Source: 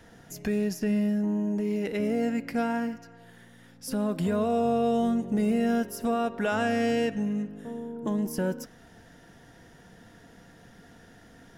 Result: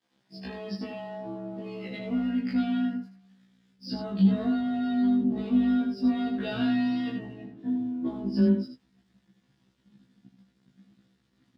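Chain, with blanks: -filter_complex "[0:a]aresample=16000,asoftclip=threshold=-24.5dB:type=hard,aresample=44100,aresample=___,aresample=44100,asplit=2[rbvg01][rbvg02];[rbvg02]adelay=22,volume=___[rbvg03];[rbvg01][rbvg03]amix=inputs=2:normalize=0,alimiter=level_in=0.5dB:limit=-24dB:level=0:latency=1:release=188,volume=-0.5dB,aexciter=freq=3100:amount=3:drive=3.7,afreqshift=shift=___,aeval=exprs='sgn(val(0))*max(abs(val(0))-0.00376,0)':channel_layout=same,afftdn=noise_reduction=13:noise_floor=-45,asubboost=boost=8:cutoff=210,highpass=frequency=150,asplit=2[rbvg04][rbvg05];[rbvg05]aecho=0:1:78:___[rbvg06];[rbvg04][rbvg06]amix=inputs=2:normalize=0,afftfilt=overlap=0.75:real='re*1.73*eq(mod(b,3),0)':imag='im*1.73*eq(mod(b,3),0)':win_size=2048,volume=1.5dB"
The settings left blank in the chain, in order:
11025, -2dB, 17, 0.447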